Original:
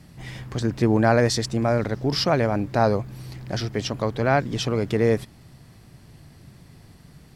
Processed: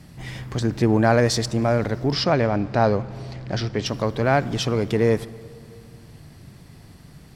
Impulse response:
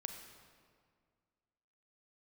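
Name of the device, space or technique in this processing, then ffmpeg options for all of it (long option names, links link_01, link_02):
saturated reverb return: -filter_complex "[0:a]asplit=2[link_01][link_02];[1:a]atrim=start_sample=2205[link_03];[link_02][link_03]afir=irnorm=-1:irlink=0,asoftclip=type=tanh:threshold=-27.5dB,volume=-5.5dB[link_04];[link_01][link_04]amix=inputs=2:normalize=0,asettb=1/sr,asplit=3[link_05][link_06][link_07];[link_05]atrim=end=2.124[link_08];[link_06]atrim=start=2.12:end=3.86,asetpts=PTS-STARTPTS,afade=type=in:duration=0.004:curve=qsin,afade=type=out:start_time=1.736:duration=0.004:curve=qsin,lowpass=5600[link_09];[link_07]atrim=start=3.856[link_10];[link_08][link_09]acrossfade=duration=0.004:curve1=hsin:curve2=qsin[link_11];[link_11][link_10]acrossfade=duration=0.004:curve1=qsin:curve2=hsin"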